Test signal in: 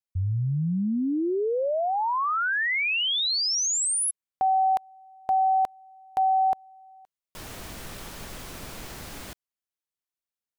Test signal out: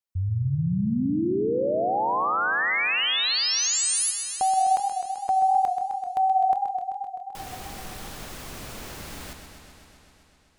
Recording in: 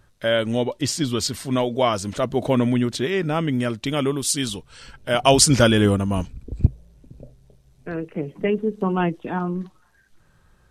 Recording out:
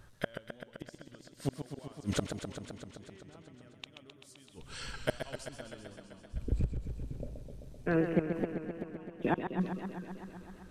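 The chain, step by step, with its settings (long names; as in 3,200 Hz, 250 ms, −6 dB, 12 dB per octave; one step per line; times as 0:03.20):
gate with flip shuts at −17 dBFS, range −36 dB
feedback echo with a swinging delay time 129 ms, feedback 78%, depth 105 cents, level −8 dB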